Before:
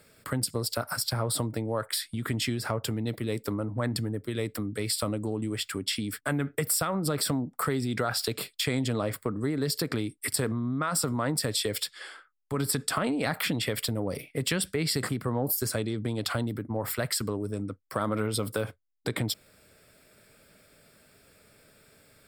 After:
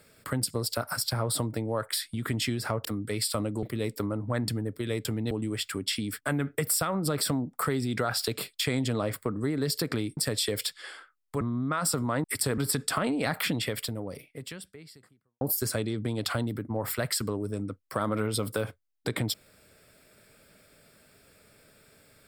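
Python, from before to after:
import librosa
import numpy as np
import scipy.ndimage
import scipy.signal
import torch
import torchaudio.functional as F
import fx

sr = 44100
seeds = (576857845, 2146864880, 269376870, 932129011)

y = fx.edit(x, sr, fx.swap(start_s=2.85, length_s=0.26, other_s=4.53, other_length_s=0.78),
    fx.swap(start_s=10.17, length_s=0.34, other_s=11.34, other_length_s=1.24),
    fx.fade_out_span(start_s=13.53, length_s=1.88, curve='qua'), tone=tone)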